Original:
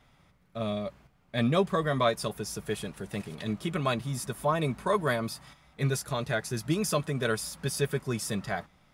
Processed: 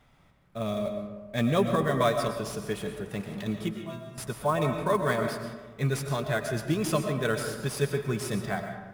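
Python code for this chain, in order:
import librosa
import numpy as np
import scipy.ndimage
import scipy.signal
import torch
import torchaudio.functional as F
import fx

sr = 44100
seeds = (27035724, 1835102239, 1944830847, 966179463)

p1 = fx.stiff_resonator(x, sr, f0_hz=120.0, decay_s=0.75, stiffness=0.008, at=(3.71, 4.18))
p2 = fx.sample_hold(p1, sr, seeds[0], rate_hz=9900.0, jitter_pct=20)
p3 = p1 + (p2 * librosa.db_to_amplitude(-6.0))
p4 = fx.rev_freeverb(p3, sr, rt60_s=1.3, hf_ratio=0.45, predelay_ms=75, drr_db=5.5)
y = p4 * librosa.db_to_amplitude(-3.0)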